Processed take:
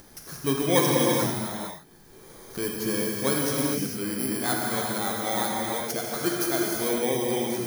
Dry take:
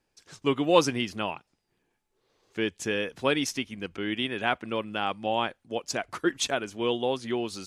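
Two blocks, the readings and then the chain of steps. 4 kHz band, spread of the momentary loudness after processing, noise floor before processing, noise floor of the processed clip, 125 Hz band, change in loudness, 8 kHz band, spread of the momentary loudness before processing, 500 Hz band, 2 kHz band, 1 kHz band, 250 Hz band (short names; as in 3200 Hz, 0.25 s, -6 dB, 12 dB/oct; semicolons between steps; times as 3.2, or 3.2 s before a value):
0.0 dB, 10 LU, -77 dBFS, -51 dBFS, +6.5 dB, +3.0 dB, +8.0 dB, 11 LU, +1.0 dB, -0.5 dB, +0.5 dB, +3.0 dB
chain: FFT order left unsorted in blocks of 16 samples; fifteen-band EQ 160 Hz +6 dB, 1600 Hz +3 dB, 6300 Hz +4 dB; upward compressor, threshold -28 dBFS; non-linear reverb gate 0.48 s flat, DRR -3 dB; gain -3 dB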